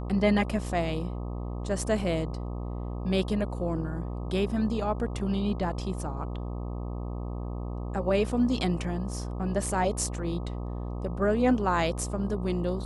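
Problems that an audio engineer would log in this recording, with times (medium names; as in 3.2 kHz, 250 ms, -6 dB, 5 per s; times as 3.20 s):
buzz 60 Hz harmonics 21 -34 dBFS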